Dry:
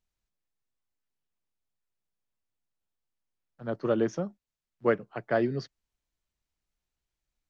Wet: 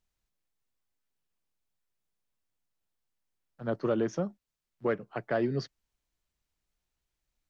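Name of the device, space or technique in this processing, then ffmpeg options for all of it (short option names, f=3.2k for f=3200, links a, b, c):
soft clipper into limiter: -af "asoftclip=type=tanh:threshold=-13.5dB,alimiter=limit=-21.5dB:level=0:latency=1:release=223,volume=2dB"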